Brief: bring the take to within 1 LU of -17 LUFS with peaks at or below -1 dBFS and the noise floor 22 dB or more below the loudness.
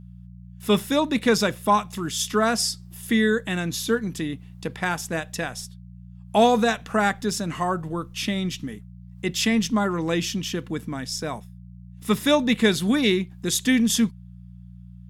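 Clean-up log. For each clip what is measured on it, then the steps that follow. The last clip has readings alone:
hum 60 Hz; harmonics up to 180 Hz; hum level -41 dBFS; loudness -23.5 LUFS; peak -6.5 dBFS; loudness target -17.0 LUFS
-> de-hum 60 Hz, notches 3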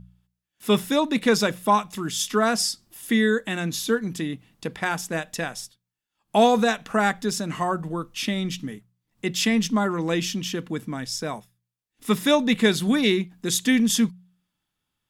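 hum none; loudness -23.5 LUFS; peak -6.5 dBFS; loudness target -17.0 LUFS
-> gain +6.5 dB; limiter -1 dBFS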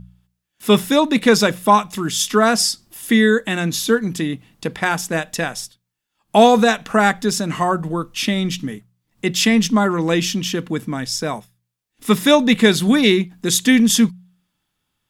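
loudness -17.0 LUFS; peak -1.0 dBFS; noise floor -76 dBFS

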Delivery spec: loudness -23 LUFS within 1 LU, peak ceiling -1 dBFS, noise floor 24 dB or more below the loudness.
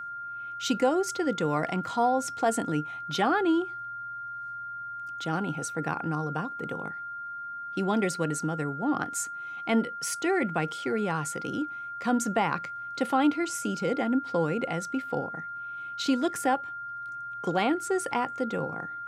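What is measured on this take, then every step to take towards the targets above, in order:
steady tone 1400 Hz; tone level -35 dBFS; loudness -29.5 LUFS; peak -13.5 dBFS; loudness target -23.0 LUFS
-> notch 1400 Hz, Q 30; gain +6.5 dB

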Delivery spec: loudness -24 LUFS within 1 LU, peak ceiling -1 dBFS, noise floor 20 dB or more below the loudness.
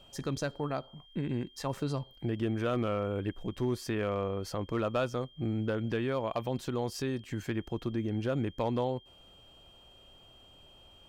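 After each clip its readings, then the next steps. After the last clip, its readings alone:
clipped 0.3%; flat tops at -22.0 dBFS; steady tone 3200 Hz; tone level -57 dBFS; loudness -34.0 LUFS; peak -22.0 dBFS; loudness target -24.0 LUFS
-> clip repair -22 dBFS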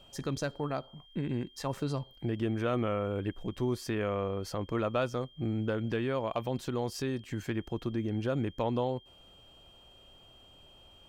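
clipped 0.0%; steady tone 3200 Hz; tone level -57 dBFS
-> notch 3200 Hz, Q 30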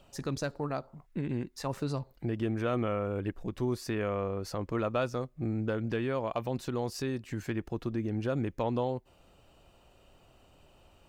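steady tone none; loudness -34.0 LUFS; peak -18.5 dBFS; loudness target -24.0 LUFS
-> gain +10 dB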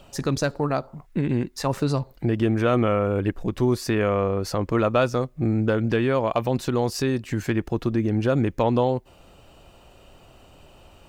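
loudness -24.0 LUFS; peak -8.5 dBFS; noise floor -53 dBFS

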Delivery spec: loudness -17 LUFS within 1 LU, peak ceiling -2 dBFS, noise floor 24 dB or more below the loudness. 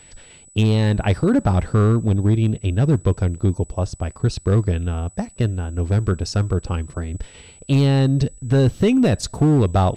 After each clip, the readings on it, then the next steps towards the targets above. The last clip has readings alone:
clipped 2.9%; flat tops at -9.5 dBFS; steady tone 7900 Hz; tone level -46 dBFS; loudness -20.0 LUFS; peak -9.5 dBFS; loudness target -17.0 LUFS
-> clip repair -9.5 dBFS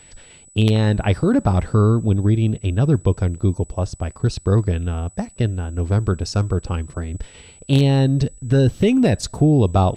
clipped 0.0%; steady tone 7900 Hz; tone level -46 dBFS
-> notch 7900 Hz, Q 30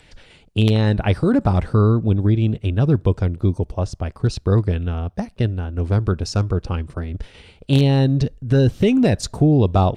steady tone none; loudness -19.5 LUFS; peak -1.0 dBFS; loudness target -17.0 LUFS
-> gain +2.5 dB; limiter -2 dBFS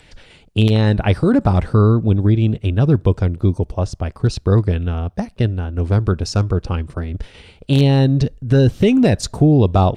loudness -17.0 LUFS; peak -2.0 dBFS; noise floor -49 dBFS

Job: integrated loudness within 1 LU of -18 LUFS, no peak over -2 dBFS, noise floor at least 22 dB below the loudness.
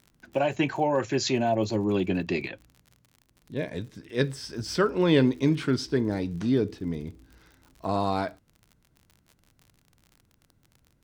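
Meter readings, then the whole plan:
ticks 47/s; loudness -27.0 LUFS; peak -9.0 dBFS; loudness target -18.0 LUFS
-> de-click; gain +9 dB; limiter -2 dBFS

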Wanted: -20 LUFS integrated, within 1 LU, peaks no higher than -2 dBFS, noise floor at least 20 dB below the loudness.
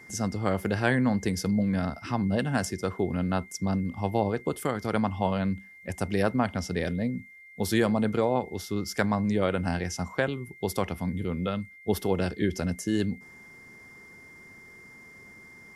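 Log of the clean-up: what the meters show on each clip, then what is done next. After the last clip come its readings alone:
steady tone 2100 Hz; tone level -48 dBFS; loudness -28.5 LUFS; peak -8.5 dBFS; loudness target -20.0 LUFS
-> notch 2100 Hz, Q 30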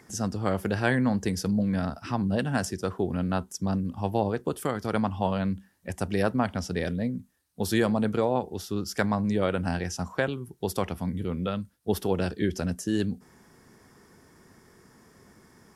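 steady tone none; loudness -28.5 LUFS; peak -8.5 dBFS; loudness target -20.0 LUFS
-> gain +8.5 dB; limiter -2 dBFS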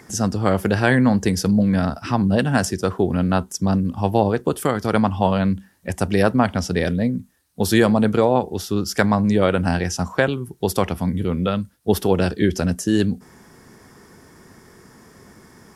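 loudness -20.0 LUFS; peak -2.0 dBFS; noise floor -52 dBFS

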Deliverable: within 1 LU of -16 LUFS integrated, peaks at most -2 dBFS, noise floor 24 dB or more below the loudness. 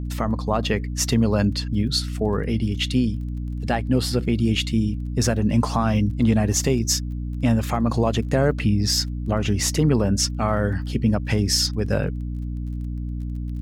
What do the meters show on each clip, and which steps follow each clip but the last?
ticks 23/s; hum 60 Hz; harmonics up to 300 Hz; hum level -26 dBFS; loudness -22.5 LUFS; peak -7.5 dBFS; loudness target -16.0 LUFS
-> de-click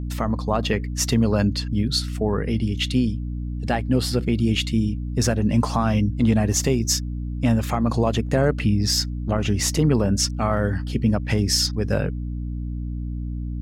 ticks 0.073/s; hum 60 Hz; harmonics up to 300 Hz; hum level -26 dBFS
-> de-hum 60 Hz, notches 5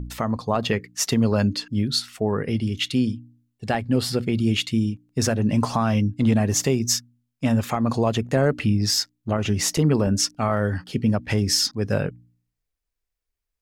hum none; loudness -23.0 LUFS; peak -8.0 dBFS; loudness target -16.0 LUFS
-> gain +7 dB; limiter -2 dBFS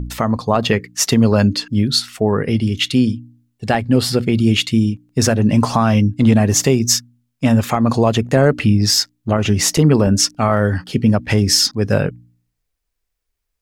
loudness -16.0 LUFS; peak -2.0 dBFS; noise floor -75 dBFS

